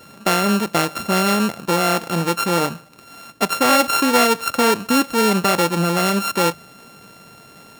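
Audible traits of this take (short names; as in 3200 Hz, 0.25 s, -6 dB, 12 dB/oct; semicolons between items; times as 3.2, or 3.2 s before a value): a buzz of ramps at a fixed pitch in blocks of 32 samples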